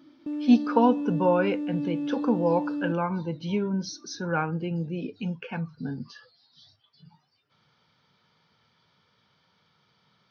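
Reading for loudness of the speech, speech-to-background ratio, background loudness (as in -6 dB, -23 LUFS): -27.5 LUFS, 4.0 dB, -31.5 LUFS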